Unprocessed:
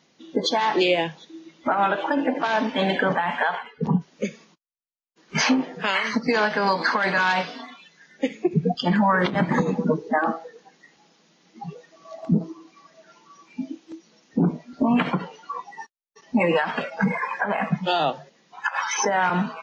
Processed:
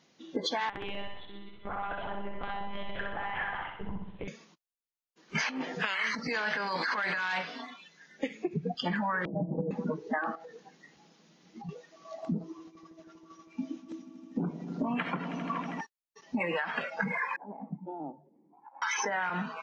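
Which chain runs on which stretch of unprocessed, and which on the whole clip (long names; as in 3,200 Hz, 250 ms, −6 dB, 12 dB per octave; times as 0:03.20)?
0:00.69–0:04.28: one-pitch LPC vocoder at 8 kHz 200 Hz + downward compressor, threshold −30 dBFS + repeating echo 64 ms, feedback 59%, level −4 dB
0:05.49–0:07.38: high-shelf EQ 2,600 Hz +7 dB + compressor whose output falls as the input rises −24 dBFS
0:09.25–0:09.71: Butterworth low-pass 700 Hz 48 dB per octave + comb filter 6.3 ms, depth 77%
0:10.35–0:11.69: downward compressor 5 to 1, threshold −40 dBFS + low-shelf EQ 230 Hz +9 dB
0:12.43–0:15.81: notch filter 4,500 Hz, Q 15 + downward expander −48 dBFS + echo that builds up and dies away 80 ms, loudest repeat 5, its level −18 dB
0:17.36–0:18.82: formant resonators in series u + upward compression, threshold −49 dBFS
whole clip: dynamic equaliser 1,800 Hz, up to +8 dB, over −37 dBFS, Q 0.91; downward compressor, threshold −25 dBFS; level −4 dB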